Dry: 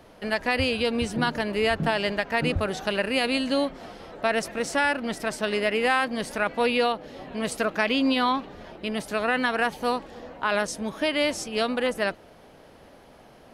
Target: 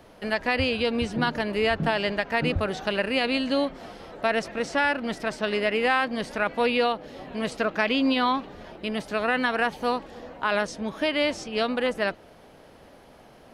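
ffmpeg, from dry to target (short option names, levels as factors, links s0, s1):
-filter_complex "[0:a]acrossover=split=5900[s0][s1];[s1]acompressor=threshold=0.00178:ratio=6[s2];[s0][s2]amix=inputs=2:normalize=0"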